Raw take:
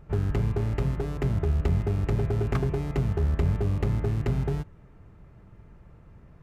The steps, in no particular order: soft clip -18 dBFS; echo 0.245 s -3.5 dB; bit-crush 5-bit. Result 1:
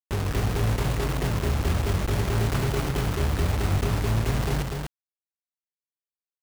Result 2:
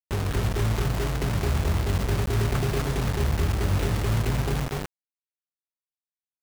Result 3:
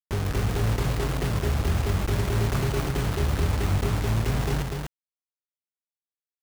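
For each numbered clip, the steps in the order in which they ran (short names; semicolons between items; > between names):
soft clip > bit-crush > echo; soft clip > echo > bit-crush; bit-crush > soft clip > echo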